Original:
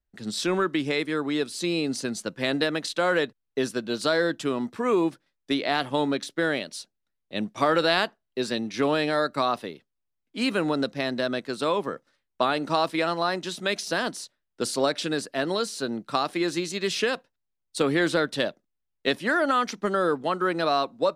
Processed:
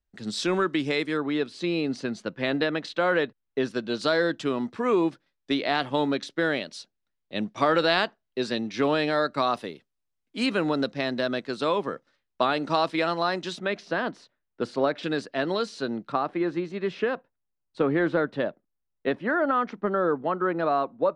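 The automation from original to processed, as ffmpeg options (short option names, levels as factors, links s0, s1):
-af "asetnsamples=n=441:p=0,asendcmd='1.17 lowpass f 3300;3.71 lowpass f 5500;9.47 lowpass f 10000;10.46 lowpass f 5700;13.59 lowpass f 2200;15.03 lowpass f 3900;16.12 lowpass f 1600',lowpass=7500"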